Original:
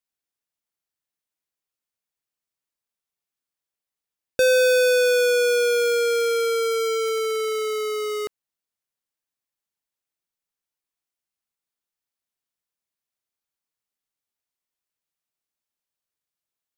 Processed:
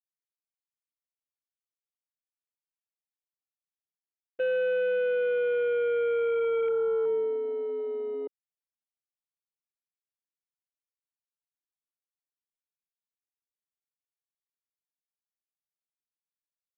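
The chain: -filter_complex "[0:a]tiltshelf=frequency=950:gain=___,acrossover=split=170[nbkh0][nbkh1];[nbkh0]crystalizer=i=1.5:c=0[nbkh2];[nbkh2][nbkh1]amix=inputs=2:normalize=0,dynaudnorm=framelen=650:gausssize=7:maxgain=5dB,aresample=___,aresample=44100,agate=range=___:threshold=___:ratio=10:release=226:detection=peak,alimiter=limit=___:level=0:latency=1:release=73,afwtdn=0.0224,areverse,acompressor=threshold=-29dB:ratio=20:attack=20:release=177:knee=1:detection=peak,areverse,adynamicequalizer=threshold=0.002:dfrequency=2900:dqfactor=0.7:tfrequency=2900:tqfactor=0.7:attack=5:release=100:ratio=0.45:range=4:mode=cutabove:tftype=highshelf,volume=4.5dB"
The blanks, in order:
3.5, 8000, -17dB, -14dB, -12.5dB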